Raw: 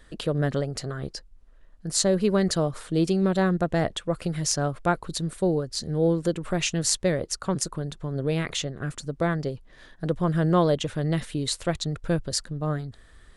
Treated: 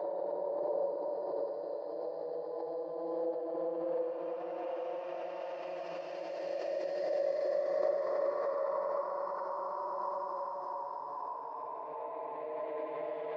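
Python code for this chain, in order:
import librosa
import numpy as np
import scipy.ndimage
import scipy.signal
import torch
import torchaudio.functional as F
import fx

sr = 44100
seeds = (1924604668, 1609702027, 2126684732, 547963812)

p1 = fx.spec_quant(x, sr, step_db=15)
p2 = fx.env_lowpass(p1, sr, base_hz=590.0, full_db=-18.5)
p3 = fx.peak_eq(p2, sr, hz=2200.0, db=4.5, octaves=0.48)
p4 = fx.auto_wah(p3, sr, base_hz=600.0, top_hz=1500.0, q=12.0, full_db=-23.5, direction='down')
p5 = fx.cabinet(p4, sr, low_hz=360.0, low_slope=12, high_hz=5700.0, hz=(550.0, 980.0, 1800.0, 4900.0), db=(-4, 10, 5, 7))
p6 = p5 + fx.echo_single(p5, sr, ms=88, db=-3.0, dry=0)
p7 = fx.paulstretch(p6, sr, seeds[0], factor=4.4, window_s=1.0, from_s=5.37)
p8 = fx.pre_swell(p7, sr, db_per_s=20.0)
y = p8 * librosa.db_to_amplitude(4.5)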